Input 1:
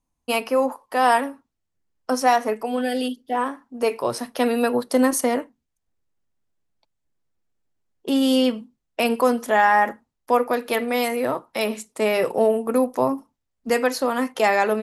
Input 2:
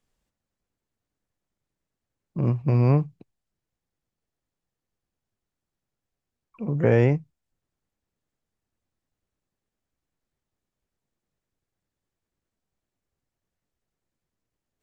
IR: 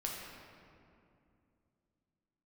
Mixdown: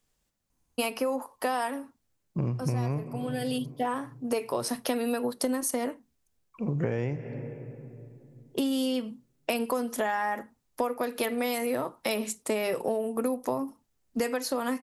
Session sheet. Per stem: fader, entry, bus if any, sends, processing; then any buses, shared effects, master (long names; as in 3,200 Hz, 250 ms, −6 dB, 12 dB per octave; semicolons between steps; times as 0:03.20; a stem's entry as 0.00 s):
−1.5 dB, 0.50 s, no send, low-shelf EQ 450 Hz +4.5 dB; automatic ducking −12 dB, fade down 0.25 s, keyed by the second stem
−1.0 dB, 0.00 s, send −12.5 dB, no processing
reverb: on, RT60 2.5 s, pre-delay 7 ms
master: high-shelf EQ 4,200 Hz +7.5 dB; downward compressor 12 to 1, threshold −25 dBFS, peak gain reduction 14 dB